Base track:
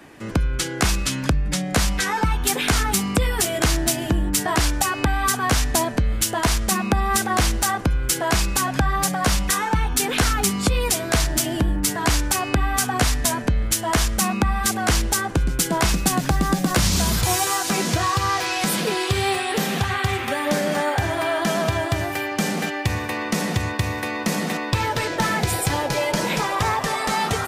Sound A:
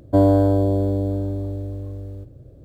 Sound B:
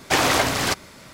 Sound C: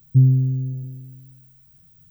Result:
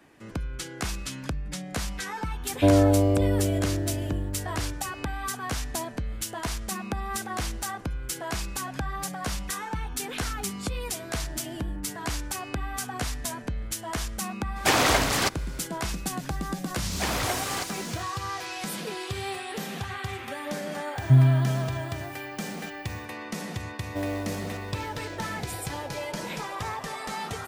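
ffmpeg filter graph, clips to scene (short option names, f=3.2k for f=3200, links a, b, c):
-filter_complex "[1:a]asplit=2[a][b];[2:a]asplit=2[c][d];[0:a]volume=-11.5dB[e];[d]aeval=exprs='val(0)+0.5*0.0299*sgn(val(0))':c=same[f];[b]acrusher=bits=4:mode=log:mix=0:aa=0.000001[g];[a]atrim=end=2.64,asetpts=PTS-STARTPTS,volume=-3.5dB,afade=t=in:d=0.004:c=hsin,afade=t=out:st=2.636:d=0.004:c=hsin,adelay=2490[h];[c]atrim=end=1.13,asetpts=PTS-STARTPTS,volume=-2.5dB,afade=t=in:d=0.02,afade=t=out:st=1.11:d=0.02,adelay=14550[i];[f]atrim=end=1.13,asetpts=PTS-STARTPTS,volume=-11.5dB,afade=t=in:d=0.004:c=hsin,afade=t=out:st=1.126:d=0.004:c=hsin,adelay=16900[j];[3:a]atrim=end=2.1,asetpts=PTS-STARTPTS,volume=-3dB,afade=t=in:d=0.004:c=hsin,afade=t=out:st=2.096:d=0.004:c=hsin,adelay=20950[k];[g]atrim=end=2.64,asetpts=PTS-STARTPTS,volume=-17dB,afade=t=in:d=0.004:c=hsin,afade=t=out:st=2.636:d=0.004:c=hsin,adelay=23820[l];[e][h][i][j][k][l]amix=inputs=6:normalize=0"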